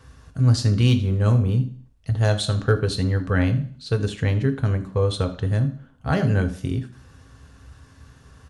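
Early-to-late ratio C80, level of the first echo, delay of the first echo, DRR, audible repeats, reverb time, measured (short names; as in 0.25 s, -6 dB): 18.0 dB, -17.0 dB, 78 ms, 5.5 dB, 1, 0.50 s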